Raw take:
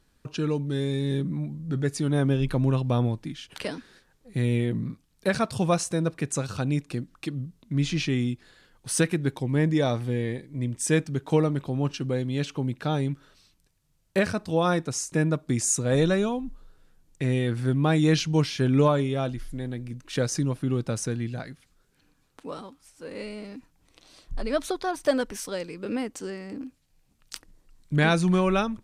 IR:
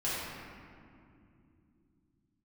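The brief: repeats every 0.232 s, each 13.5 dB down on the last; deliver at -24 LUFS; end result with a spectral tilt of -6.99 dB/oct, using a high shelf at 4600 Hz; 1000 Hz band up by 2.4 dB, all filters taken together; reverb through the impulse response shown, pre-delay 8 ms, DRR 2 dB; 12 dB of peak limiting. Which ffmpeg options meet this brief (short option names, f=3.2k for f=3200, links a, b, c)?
-filter_complex "[0:a]equalizer=f=1k:t=o:g=3.5,highshelf=f=4.6k:g=-5,alimiter=limit=-21dB:level=0:latency=1,aecho=1:1:232|464:0.211|0.0444,asplit=2[a][b];[1:a]atrim=start_sample=2205,adelay=8[c];[b][c]afir=irnorm=-1:irlink=0,volume=-9.5dB[d];[a][d]amix=inputs=2:normalize=0,volume=4dB"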